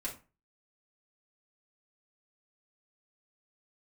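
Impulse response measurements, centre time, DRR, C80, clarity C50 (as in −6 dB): 17 ms, −5.0 dB, 17.0 dB, 10.5 dB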